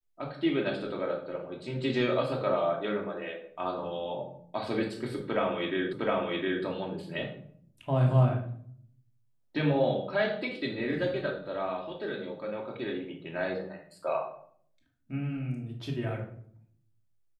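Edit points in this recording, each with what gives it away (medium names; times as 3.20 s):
5.93 s: repeat of the last 0.71 s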